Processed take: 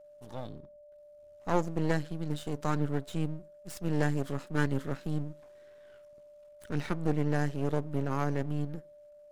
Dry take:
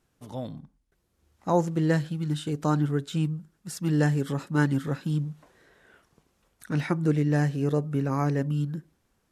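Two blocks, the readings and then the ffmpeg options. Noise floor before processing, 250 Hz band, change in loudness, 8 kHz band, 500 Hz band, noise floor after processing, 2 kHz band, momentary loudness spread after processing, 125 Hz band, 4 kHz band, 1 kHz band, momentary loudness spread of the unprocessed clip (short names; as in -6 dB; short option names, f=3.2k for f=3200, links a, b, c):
-73 dBFS, -6.5 dB, -6.0 dB, -6.0 dB, -4.0 dB, -55 dBFS, -4.0 dB, 14 LU, -7.0 dB, -5.5 dB, -4.0 dB, 13 LU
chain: -af "aeval=exprs='max(val(0),0)':c=same,aeval=exprs='val(0)+0.00355*sin(2*PI*590*n/s)':c=same,volume=-2.5dB"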